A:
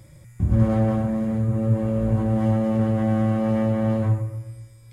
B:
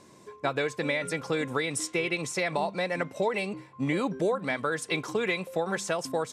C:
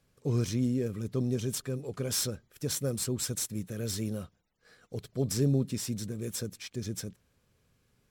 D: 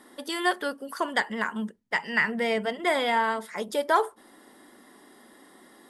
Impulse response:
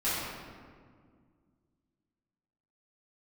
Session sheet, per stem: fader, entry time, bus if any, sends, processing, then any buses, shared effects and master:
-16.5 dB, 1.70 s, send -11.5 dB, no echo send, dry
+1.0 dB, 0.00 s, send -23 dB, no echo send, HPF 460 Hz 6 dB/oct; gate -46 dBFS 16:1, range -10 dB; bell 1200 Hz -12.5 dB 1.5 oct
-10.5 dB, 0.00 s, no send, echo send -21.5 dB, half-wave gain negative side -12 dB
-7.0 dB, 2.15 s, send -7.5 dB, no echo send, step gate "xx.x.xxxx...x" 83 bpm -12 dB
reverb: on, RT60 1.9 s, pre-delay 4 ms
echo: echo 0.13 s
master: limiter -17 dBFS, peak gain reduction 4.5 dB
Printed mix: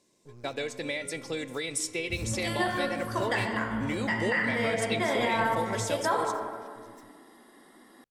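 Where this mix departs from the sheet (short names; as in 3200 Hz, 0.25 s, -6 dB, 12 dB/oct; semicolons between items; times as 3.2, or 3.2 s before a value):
stem A: send off; stem C -10.5 dB -> -19.5 dB; stem D: missing step gate "xx.x.xxxx...x" 83 bpm -12 dB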